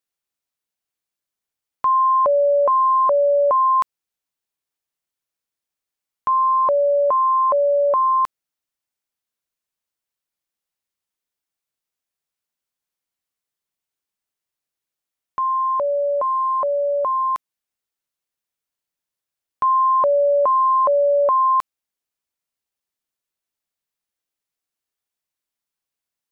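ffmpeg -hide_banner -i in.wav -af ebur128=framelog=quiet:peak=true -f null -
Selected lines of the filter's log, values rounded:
Integrated loudness:
  I:         -17.7 LUFS
  Threshold: -27.9 LUFS
Loudness range:
  LRA:         7.9 LU
  Threshold: -40.7 LUFS
  LRA low:   -25.7 LUFS
  LRA high:  -17.9 LUFS
True peak:
  Peak:      -12.9 dBFS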